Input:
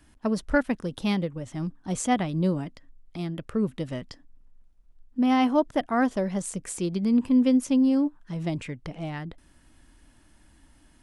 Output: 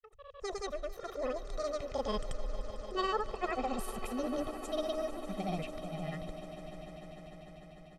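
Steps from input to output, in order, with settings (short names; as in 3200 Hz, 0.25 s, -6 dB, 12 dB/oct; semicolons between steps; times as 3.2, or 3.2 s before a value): speed glide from 191% -> 85%; Doppler pass-by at 2.89, 18 m/s, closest 5.2 m; LPF 6400 Hz 12 dB/oct; low shelf 65 Hz +11.5 dB; comb 1.6 ms, depth 91%; reverse; compressor 10:1, threshold -42 dBFS, peak gain reduction 23 dB; reverse; auto swell 0.135 s; AGC gain up to 12 dB; grains, pitch spread up and down by 0 st; on a send: swelling echo 0.149 s, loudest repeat 5, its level -16.5 dB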